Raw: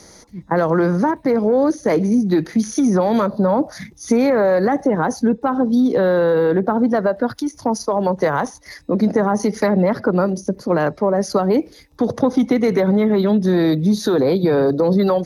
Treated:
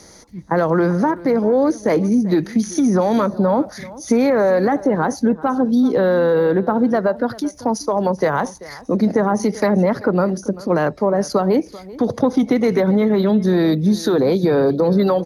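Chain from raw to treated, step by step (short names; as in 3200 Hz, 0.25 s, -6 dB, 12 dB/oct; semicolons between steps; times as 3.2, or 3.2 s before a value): echo 0.388 s -19 dB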